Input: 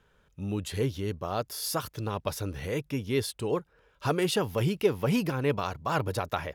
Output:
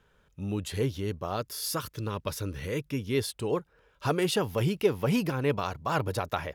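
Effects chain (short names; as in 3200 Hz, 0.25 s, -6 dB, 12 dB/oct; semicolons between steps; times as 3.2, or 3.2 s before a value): 1.36–3.15 bell 740 Hz -10.5 dB 0.38 oct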